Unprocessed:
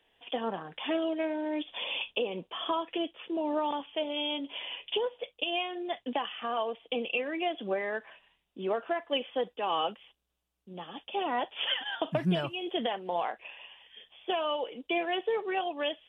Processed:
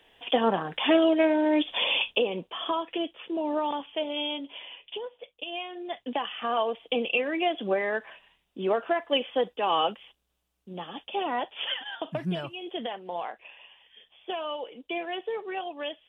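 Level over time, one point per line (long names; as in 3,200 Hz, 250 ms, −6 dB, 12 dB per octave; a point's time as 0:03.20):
0:01.84 +9.5 dB
0:02.58 +2 dB
0:04.23 +2 dB
0:04.80 −6 dB
0:05.30 −6 dB
0:06.53 +5 dB
0:10.72 +5 dB
0:12.00 −2.5 dB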